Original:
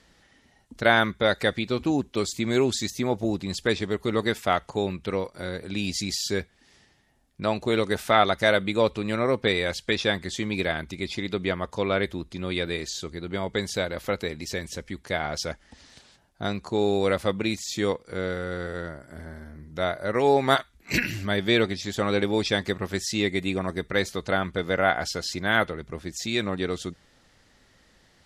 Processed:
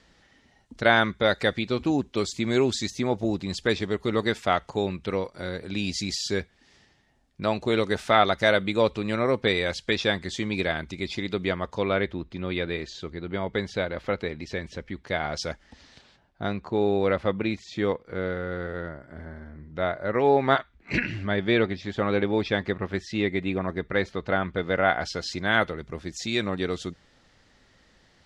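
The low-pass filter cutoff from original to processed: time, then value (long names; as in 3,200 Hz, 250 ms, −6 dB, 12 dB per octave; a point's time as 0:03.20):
0:11.58 6,900 Hz
0:12.06 3,200 Hz
0:14.92 3,200 Hz
0:15.51 7,200 Hz
0:16.60 2,700 Hz
0:24.33 2,700 Hz
0:25.54 6,700 Hz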